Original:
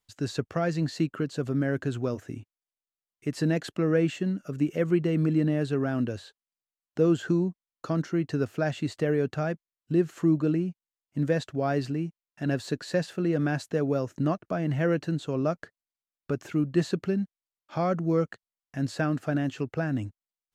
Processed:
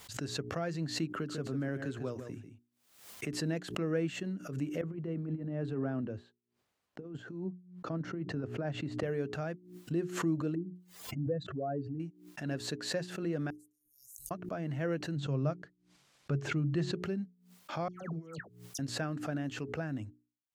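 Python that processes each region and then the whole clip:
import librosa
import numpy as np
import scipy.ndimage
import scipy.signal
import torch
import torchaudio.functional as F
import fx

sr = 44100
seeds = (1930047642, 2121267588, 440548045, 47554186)

y = fx.chain(x, sr, fx.echo_single(ms=146, db=-10.0),
    fx.band_squash(depth_pct=40), at=(1.1, 3.33))
y = fx.chain(y, sr, fx.over_compress(threshold_db=-26.0, ratio=-0.5),
    fx.lowpass(hz=1100.0, slope=6),
    fx.band_widen(depth_pct=40), at=(4.81, 9.03))
y = fx.chain(y, sr, fx.spec_expand(power=2.1),
    fx.pre_swell(db_per_s=130.0), at=(10.55, 12.0))
y = fx.chain(y, sr, fx.cheby2_bandstop(low_hz=160.0, high_hz=2100.0, order=4, stop_db=80),
    fx.low_shelf(hz=130.0, db=-10.0), at=(13.5, 14.31))
y = fx.chain(y, sr, fx.lowpass(hz=6500.0, slope=12),
    fx.peak_eq(hz=140.0, db=13.5, octaves=0.22), at=(15.16, 16.95))
y = fx.chain(y, sr, fx.over_compress(threshold_db=-32.0, ratio=-0.5),
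    fx.dispersion(late='lows', ms=136.0, hz=1900.0), at=(17.88, 18.79))
y = scipy.signal.sosfilt(scipy.signal.butter(2, 51.0, 'highpass', fs=sr, output='sos'), y)
y = fx.hum_notches(y, sr, base_hz=60, count=7)
y = fx.pre_swell(y, sr, db_per_s=88.0)
y = y * 10.0 ** (-8.5 / 20.0)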